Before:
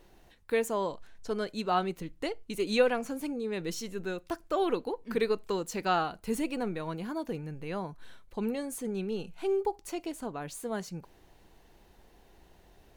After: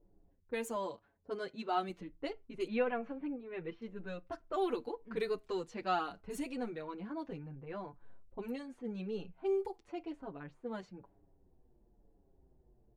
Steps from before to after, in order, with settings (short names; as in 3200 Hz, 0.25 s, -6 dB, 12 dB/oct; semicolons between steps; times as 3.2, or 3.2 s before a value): 0.75–1.89 HPF 77 Hz; low-pass opened by the level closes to 380 Hz, open at -26.5 dBFS; 2.67–3.82 LPF 2700 Hz 24 dB/oct; on a send at -18 dB: reverb RT60 0.20 s, pre-delay 3 ms; on the sum: endless flanger 6.6 ms -1 Hz; gain -4 dB